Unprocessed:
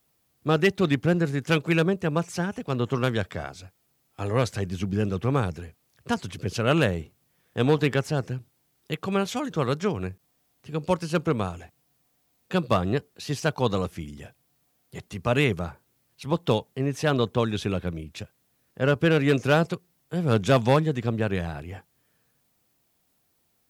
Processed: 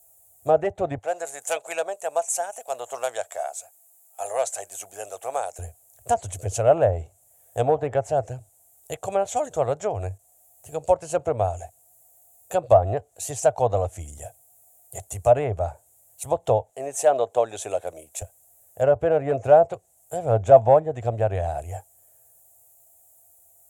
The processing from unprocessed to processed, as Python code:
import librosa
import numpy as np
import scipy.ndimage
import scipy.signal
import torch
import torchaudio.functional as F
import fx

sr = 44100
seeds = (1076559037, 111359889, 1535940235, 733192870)

y = fx.highpass(x, sr, hz=730.0, slope=12, at=(0.98, 5.59))
y = fx.highpass(y, sr, hz=320.0, slope=12, at=(16.7, 18.22))
y = fx.env_lowpass_down(y, sr, base_hz=1500.0, full_db=-18.0)
y = fx.curve_eq(y, sr, hz=(100.0, 180.0, 380.0, 680.0, 1100.0, 5000.0, 7200.0), db=(0, -21, -11, 10, -11, -12, 14))
y = F.gain(torch.from_numpy(y), 5.0).numpy()